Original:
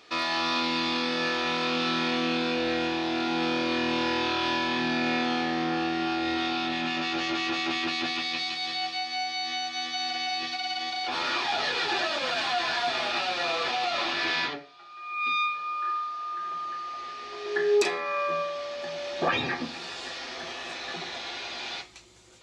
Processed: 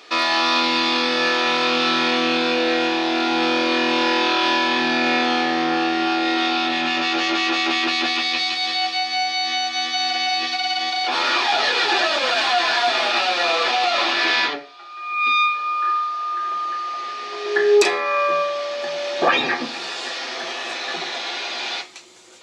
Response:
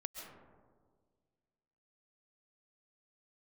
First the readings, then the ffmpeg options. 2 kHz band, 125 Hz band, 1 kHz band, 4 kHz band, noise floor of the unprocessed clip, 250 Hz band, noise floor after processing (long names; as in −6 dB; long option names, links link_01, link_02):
+9.0 dB, can't be measured, +9.0 dB, +9.0 dB, −41 dBFS, +6.0 dB, −33 dBFS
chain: -af "highpass=290,volume=9dB"